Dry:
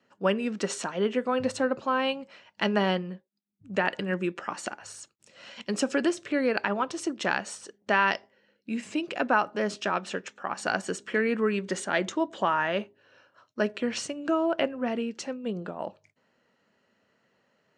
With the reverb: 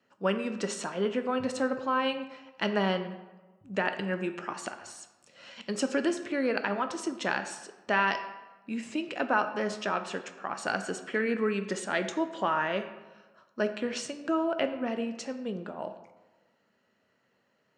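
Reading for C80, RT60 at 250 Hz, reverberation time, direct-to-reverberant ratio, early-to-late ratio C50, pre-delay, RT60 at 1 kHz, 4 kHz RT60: 12.0 dB, 1.2 s, 1.2 s, 8.0 dB, 10.5 dB, 10 ms, 1.2 s, 0.70 s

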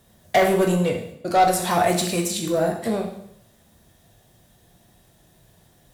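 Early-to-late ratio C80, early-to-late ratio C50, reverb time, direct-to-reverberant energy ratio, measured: 9.5 dB, 7.0 dB, 0.75 s, 1.5 dB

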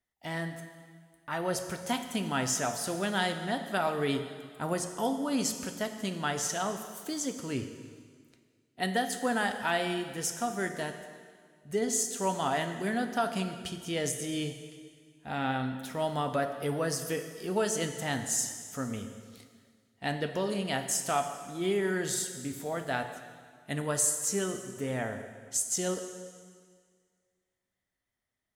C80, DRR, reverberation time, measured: 9.5 dB, 6.5 dB, 1.8 s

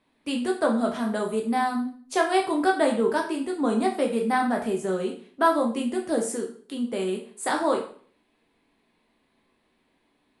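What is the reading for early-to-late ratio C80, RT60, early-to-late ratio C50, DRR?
12.5 dB, 0.50 s, 8.0 dB, 0.5 dB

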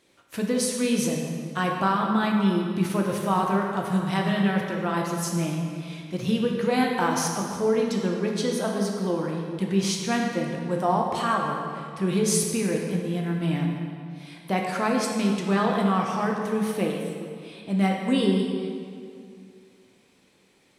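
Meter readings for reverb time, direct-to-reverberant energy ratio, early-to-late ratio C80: 2.3 s, 0.0 dB, 3.5 dB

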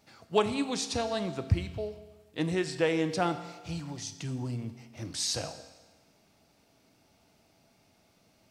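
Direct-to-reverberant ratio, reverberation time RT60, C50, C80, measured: 9.0 dB, 1.3 s, 11.5 dB, 13.0 dB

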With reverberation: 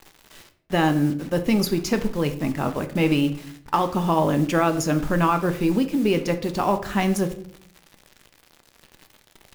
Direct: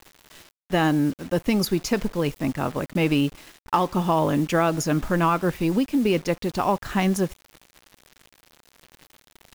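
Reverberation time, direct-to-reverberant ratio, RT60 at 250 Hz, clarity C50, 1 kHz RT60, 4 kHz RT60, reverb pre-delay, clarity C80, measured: 0.65 s, 8.0 dB, 0.85 s, 13.0 dB, 0.55 s, 0.40 s, 5 ms, 16.5 dB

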